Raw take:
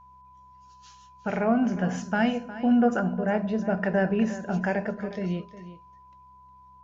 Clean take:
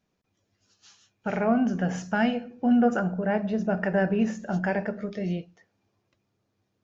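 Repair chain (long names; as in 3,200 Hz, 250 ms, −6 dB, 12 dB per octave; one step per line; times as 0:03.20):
hum removal 65 Hz, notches 3
notch filter 1,000 Hz, Q 30
echo removal 359 ms −14.5 dB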